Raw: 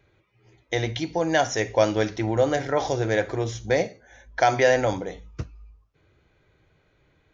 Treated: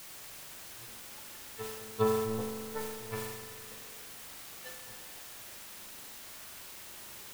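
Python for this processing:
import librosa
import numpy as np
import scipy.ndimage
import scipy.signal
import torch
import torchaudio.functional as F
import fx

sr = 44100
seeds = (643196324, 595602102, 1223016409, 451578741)

y = fx.bin_expand(x, sr, power=2.0)
y = fx.highpass(y, sr, hz=56.0, slope=6)
y = fx.tilt_shelf(y, sr, db=-3.0, hz=970.0)
y = np.clip(y, -10.0 ** (-19.5 / 20.0), 10.0 ** (-19.5 / 20.0))
y = fx.octave_resonator(y, sr, note='A', decay_s=0.32)
y = fx.power_curve(y, sr, exponent=3.0)
y = fx.quant_dither(y, sr, seeds[0], bits=10, dither='triangular')
y = fx.rev_spring(y, sr, rt60_s=2.4, pass_ms=(41,), chirp_ms=50, drr_db=2.5)
y = fx.sustainer(y, sr, db_per_s=40.0)
y = y * 10.0 ** (12.0 / 20.0)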